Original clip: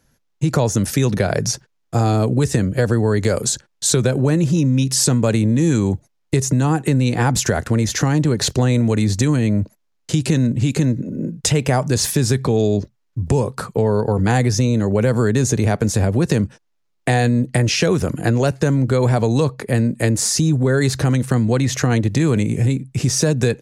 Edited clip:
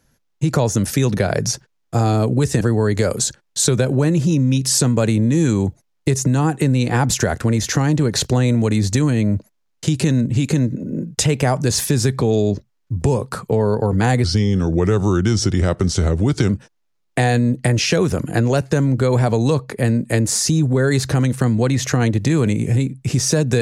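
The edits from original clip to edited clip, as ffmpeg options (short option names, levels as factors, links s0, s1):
-filter_complex "[0:a]asplit=4[s0][s1][s2][s3];[s0]atrim=end=2.612[s4];[s1]atrim=start=2.868:end=14.504[s5];[s2]atrim=start=14.5:end=16.39,asetpts=PTS-STARTPTS,asetrate=37044,aresample=44100[s6];[s3]atrim=start=16.386[s7];[s4][s5]acrossfade=d=0.004:c1=hsin:c2=hsin[s8];[s8][s6]acrossfade=d=0.004:c1=hsin:c2=hsin[s9];[s9][s7]acrossfade=d=0.004:c1=hsin:c2=hsin"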